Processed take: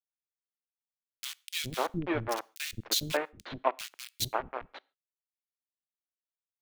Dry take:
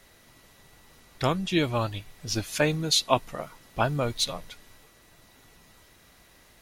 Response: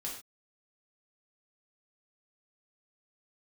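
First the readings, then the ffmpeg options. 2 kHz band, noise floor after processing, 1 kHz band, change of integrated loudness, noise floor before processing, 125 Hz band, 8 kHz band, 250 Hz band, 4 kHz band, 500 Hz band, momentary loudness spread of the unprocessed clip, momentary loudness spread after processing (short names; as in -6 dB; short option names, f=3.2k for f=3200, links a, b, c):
-5.0 dB, under -85 dBFS, -4.5 dB, -6.5 dB, -57 dBFS, -12.0 dB, -5.0 dB, -9.0 dB, -6.5 dB, -6.5 dB, 16 LU, 13 LU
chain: -filter_complex "[0:a]equalizer=f=140:w=1.7:g=-2,bandreject=f=281.5:t=h:w=4,bandreject=f=563:t=h:w=4,bandreject=f=844.5:t=h:w=4,bandreject=f=1.126k:t=h:w=4,bandreject=f=1.4075k:t=h:w=4,dynaudnorm=f=340:g=7:m=7dB,aeval=exprs='val(0)*gte(abs(val(0)),0.133)':c=same,acrossover=split=290|2200[a][b][c];[a]adelay=410[d];[b]adelay=540[e];[d][e][c]amix=inputs=3:normalize=0,asplit=2[f][g];[1:a]atrim=start_sample=2205[h];[g][h]afir=irnorm=-1:irlink=0,volume=-21.5dB[i];[f][i]amix=inputs=2:normalize=0,adynamicequalizer=threshold=0.01:dfrequency=3600:dqfactor=0.7:tfrequency=3600:tqfactor=0.7:attack=5:release=100:ratio=0.375:range=3:mode=cutabove:tftype=highshelf,volume=-7.5dB"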